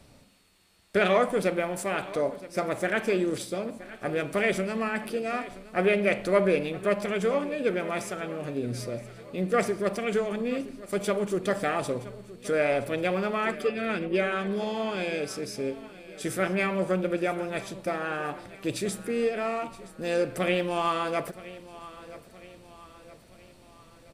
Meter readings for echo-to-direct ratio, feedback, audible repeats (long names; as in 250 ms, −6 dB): −16.5 dB, 50%, 3